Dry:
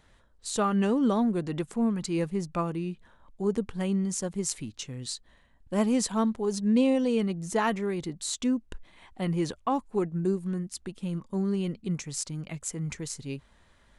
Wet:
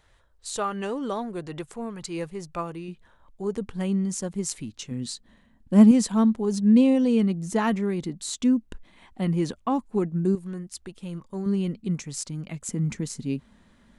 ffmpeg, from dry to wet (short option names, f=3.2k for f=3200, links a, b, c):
-af "asetnsamples=n=441:p=0,asendcmd='2.88 equalizer g -3.5;3.61 equalizer g 3;4.91 equalizer g 14;5.91 equalizer g 7;10.35 equalizer g -4.5;11.46 equalizer g 5;12.69 equalizer g 15',equalizer=f=220:t=o:w=0.92:g=-10"